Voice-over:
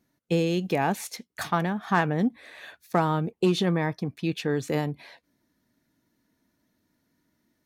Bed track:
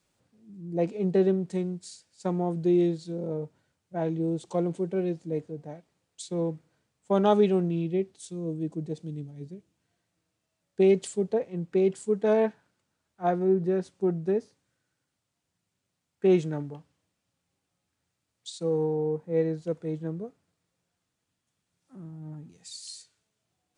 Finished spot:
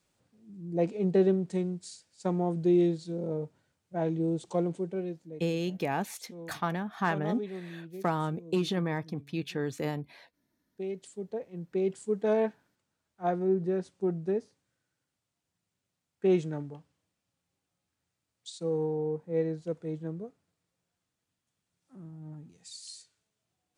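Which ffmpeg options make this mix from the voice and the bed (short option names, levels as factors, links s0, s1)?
-filter_complex "[0:a]adelay=5100,volume=0.501[s0];[1:a]volume=3.55,afade=t=out:st=4.53:d=0.89:silence=0.188365,afade=t=in:st=10.93:d=1.24:silence=0.251189[s1];[s0][s1]amix=inputs=2:normalize=0"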